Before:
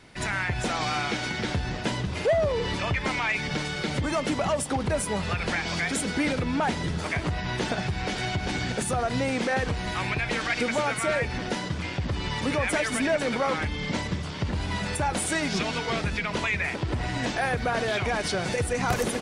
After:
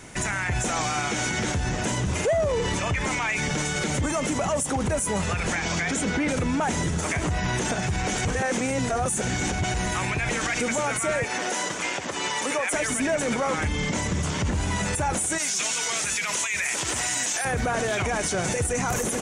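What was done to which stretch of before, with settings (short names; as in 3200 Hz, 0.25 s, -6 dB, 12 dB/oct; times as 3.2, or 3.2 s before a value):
5.55–6.27 LPF 7500 Hz -> 3700 Hz
8.25–9.74 reverse
11.24–12.74 HPF 430 Hz
15.38–17.45 tilt +4.5 dB/oct
whole clip: resonant high shelf 5500 Hz +6 dB, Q 3; limiter -25.5 dBFS; gain +8 dB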